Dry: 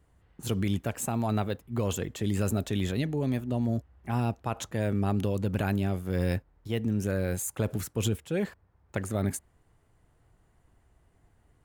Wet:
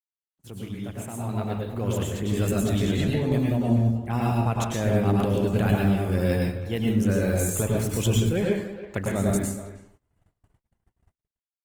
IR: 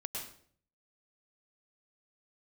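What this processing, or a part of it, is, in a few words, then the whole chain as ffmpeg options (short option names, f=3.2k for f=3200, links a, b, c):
speakerphone in a meeting room: -filter_complex "[1:a]atrim=start_sample=2205[a];[0:a][a]afir=irnorm=-1:irlink=0,asplit=2[b][c];[c]adelay=320,highpass=300,lowpass=3.4k,asoftclip=type=hard:threshold=-23dB,volume=-13dB[d];[b][d]amix=inputs=2:normalize=0,dynaudnorm=f=610:g=5:m=15dB,agate=range=-52dB:threshold=-46dB:ratio=16:detection=peak,volume=-7.5dB" -ar 48000 -c:a libopus -b:a 20k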